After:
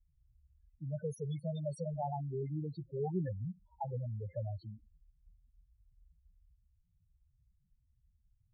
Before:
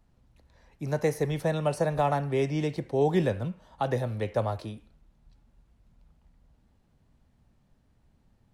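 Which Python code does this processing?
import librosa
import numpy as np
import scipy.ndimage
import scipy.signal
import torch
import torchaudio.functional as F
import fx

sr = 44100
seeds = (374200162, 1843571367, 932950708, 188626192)

y = fx.tone_stack(x, sr, knobs='5-5-5')
y = fx.spec_topn(y, sr, count=4)
y = fx.env_lowpass(y, sr, base_hz=470.0, full_db=-43.0)
y = y * 10.0 ** (9.0 / 20.0)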